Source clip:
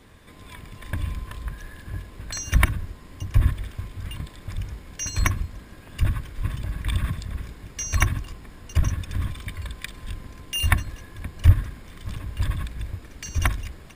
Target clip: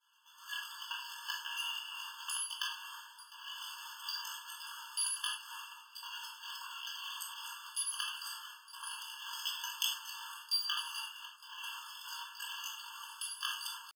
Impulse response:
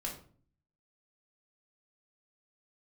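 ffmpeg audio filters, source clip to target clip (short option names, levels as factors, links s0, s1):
-filter_complex "[0:a]agate=range=0.0224:threshold=0.0141:ratio=3:detection=peak,areverse,acompressor=threshold=0.0282:ratio=10,areverse,asetrate=74167,aresample=44100,atempo=0.594604[s0];[1:a]atrim=start_sample=2205,atrim=end_sample=3528,asetrate=31311,aresample=44100[s1];[s0][s1]afir=irnorm=-1:irlink=0,afftfilt=real='re*eq(mod(floor(b*sr/1024/880),2),1)':imag='im*eq(mod(floor(b*sr/1024/880),2),1)':win_size=1024:overlap=0.75,volume=2.51"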